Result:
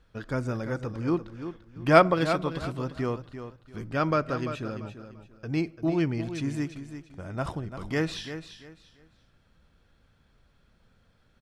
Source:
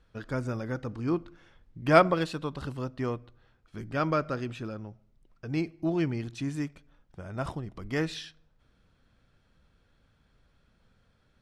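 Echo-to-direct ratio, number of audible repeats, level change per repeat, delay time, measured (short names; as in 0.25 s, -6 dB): -10.0 dB, 3, -11.5 dB, 0.342 s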